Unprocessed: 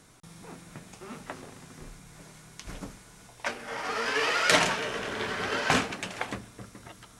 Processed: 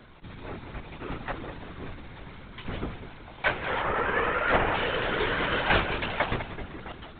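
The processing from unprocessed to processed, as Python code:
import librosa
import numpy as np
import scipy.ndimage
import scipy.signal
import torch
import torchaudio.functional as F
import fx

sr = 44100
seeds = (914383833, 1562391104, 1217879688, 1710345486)

y = fx.lowpass(x, sr, hz=1600.0, slope=12, at=(3.82, 4.74))
y = fx.rider(y, sr, range_db=3, speed_s=0.5)
y = fx.echo_feedback(y, sr, ms=191, feedback_pct=48, wet_db=-11)
y = fx.lpc_vocoder(y, sr, seeds[0], excitation='whisper', order=16)
y = y * 10.0 ** (4.0 / 20.0)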